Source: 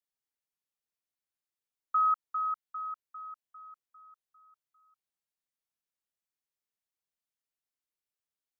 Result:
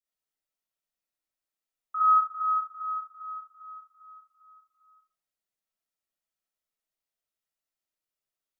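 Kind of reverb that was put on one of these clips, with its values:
comb and all-pass reverb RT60 0.55 s, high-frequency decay 0.35×, pre-delay 10 ms, DRR −7 dB
level −6 dB

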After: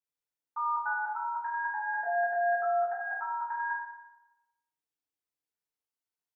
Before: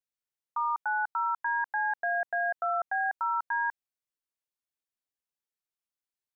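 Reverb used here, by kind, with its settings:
feedback delay network reverb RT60 0.98 s, low-frequency decay 0.8×, high-frequency decay 0.55×, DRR −9 dB
level −10.5 dB

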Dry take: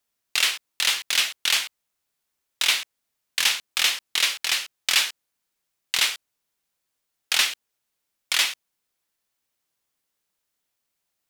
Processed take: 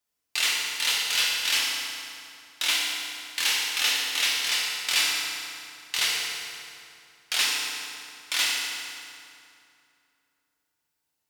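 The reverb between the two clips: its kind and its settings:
feedback delay network reverb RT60 2.6 s, low-frequency decay 1.2×, high-frequency decay 0.75×, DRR −4.5 dB
level −6.5 dB

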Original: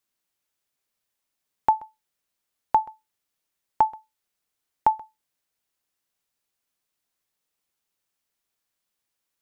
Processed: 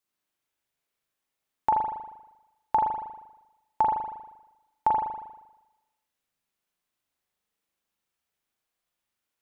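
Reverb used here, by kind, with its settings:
spring reverb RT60 1 s, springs 39 ms, chirp 30 ms, DRR −2.5 dB
level −4.5 dB

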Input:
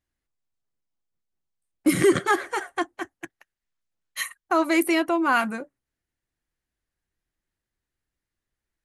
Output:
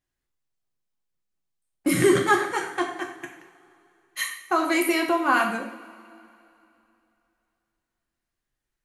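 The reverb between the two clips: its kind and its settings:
coupled-rooms reverb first 0.6 s, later 2.9 s, from −20 dB, DRR 1 dB
level −1.5 dB

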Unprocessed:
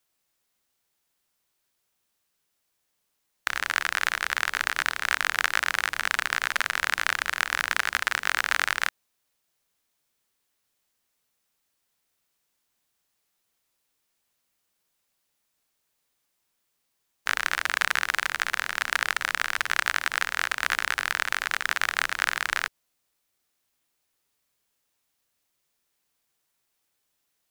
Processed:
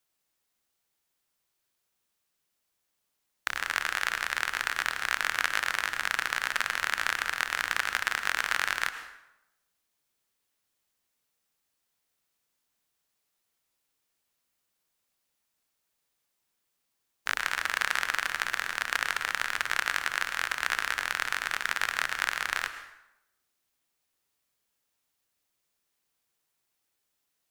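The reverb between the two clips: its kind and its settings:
dense smooth reverb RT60 0.86 s, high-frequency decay 0.75×, pre-delay 95 ms, DRR 10 dB
level −3.5 dB

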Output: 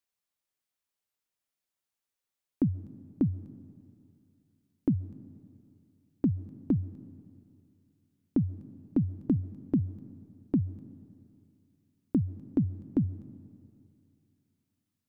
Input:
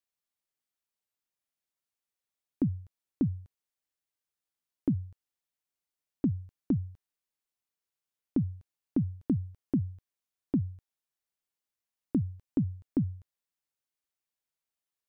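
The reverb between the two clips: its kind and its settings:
comb and all-pass reverb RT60 2.6 s, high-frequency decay 0.95×, pre-delay 95 ms, DRR 17.5 dB
level +1.5 dB

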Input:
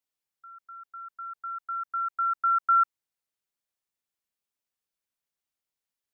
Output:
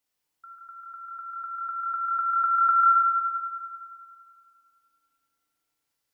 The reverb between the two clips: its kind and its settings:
feedback delay network reverb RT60 2.3 s, low-frequency decay 1.3×, high-frequency decay 0.6×, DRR −1 dB
level +5.5 dB

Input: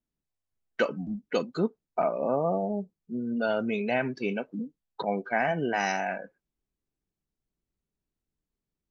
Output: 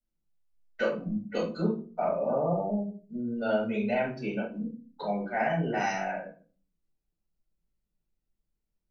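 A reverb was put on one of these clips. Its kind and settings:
rectangular room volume 230 cubic metres, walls furnished, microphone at 6.8 metres
level −14 dB

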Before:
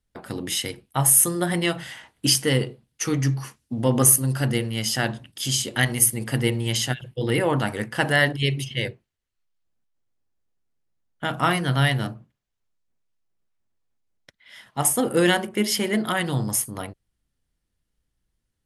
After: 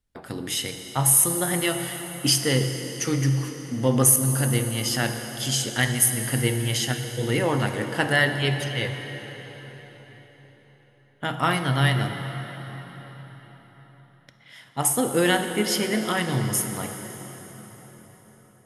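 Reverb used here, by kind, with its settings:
dense smooth reverb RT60 4.9 s, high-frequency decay 0.8×, DRR 6 dB
level −1.5 dB

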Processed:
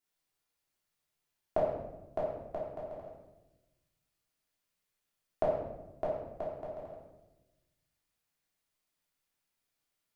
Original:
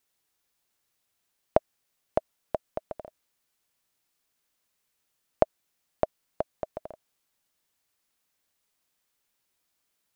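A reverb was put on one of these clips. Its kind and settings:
rectangular room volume 420 cubic metres, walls mixed, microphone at 3.2 metres
level −14 dB

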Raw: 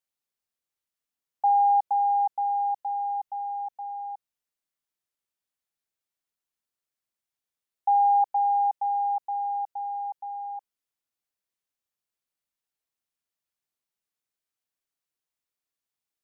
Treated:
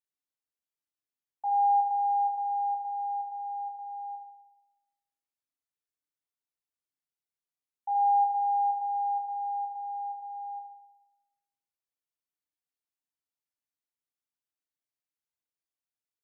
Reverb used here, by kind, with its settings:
feedback delay network reverb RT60 1 s, low-frequency decay 1.1×, high-frequency decay 0.55×, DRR 0.5 dB
level −11 dB

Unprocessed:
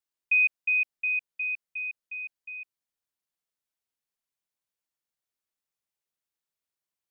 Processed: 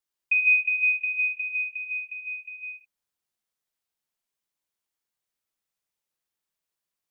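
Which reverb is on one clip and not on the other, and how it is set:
reverb whose tail is shaped and stops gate 230 ms flat, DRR 2.5 dB
level +1 dB

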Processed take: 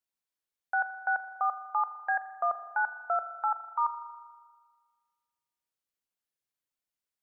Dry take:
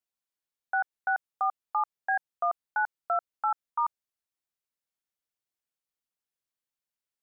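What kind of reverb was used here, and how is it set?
spring reverb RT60 1.6 s, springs 39 ms, chirp 30 ms, DRR 10.5 dB
level −1 dB

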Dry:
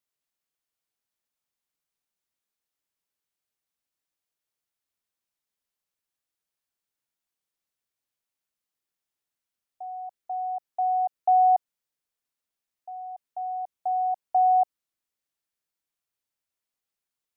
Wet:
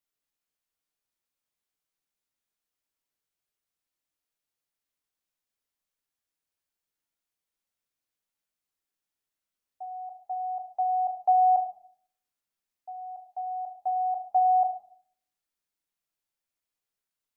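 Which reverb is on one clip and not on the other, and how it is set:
rectangular room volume 78 cubic metres, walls mixed, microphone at 0.48 metres
level −2.5 dB

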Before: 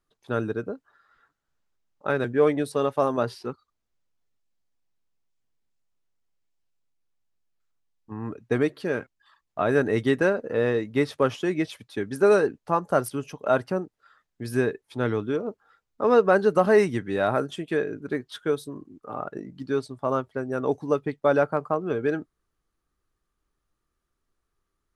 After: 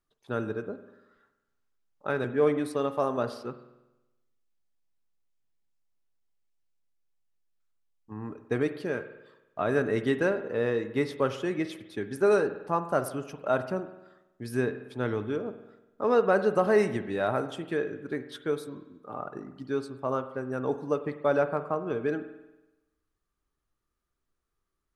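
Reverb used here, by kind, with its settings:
spring reverb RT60 1 s, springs 47 ms, chirp 65 ms, DRR 10.5 dB
level −4.5 dB

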